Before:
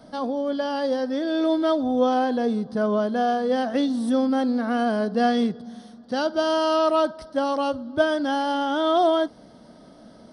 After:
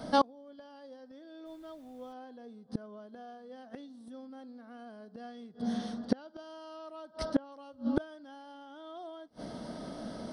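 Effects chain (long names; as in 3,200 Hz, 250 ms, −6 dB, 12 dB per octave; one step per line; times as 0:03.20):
gate with flip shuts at −20 dBFS, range −32 dB
0:01.45–0:02.12: background noise pink −75 dBFS
0:05.72–0:07.52: treble cut that deepens with the level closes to 2,800 Hz, closed at −32 dBFS
level +6 dB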